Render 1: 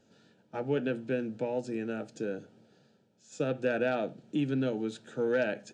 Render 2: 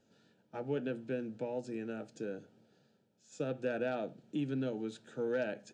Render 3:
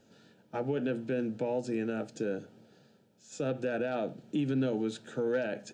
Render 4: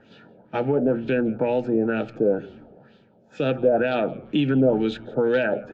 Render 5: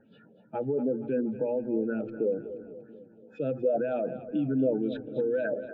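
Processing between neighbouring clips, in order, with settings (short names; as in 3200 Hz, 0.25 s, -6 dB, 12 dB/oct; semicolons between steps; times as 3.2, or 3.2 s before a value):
dynamic EQ 2100 Hz, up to -3 dB, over -43 dBFS, Q 1; gain -5.5 dB
limiter -31 dBFS, peak gain reduction 8 dB; gain +8 dB
LFO low-pass sine 2.1 Hz 600–3500 Hz; frequency-shifting echo 0.171 s, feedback 33%, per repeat -110 Hz, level -23 dB; gain +9 dB
spectral contrast raised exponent 1.8; split-band echo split 350 Hz, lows 0.341 s, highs 0.239 s, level -12.5 dB; gain -7 dB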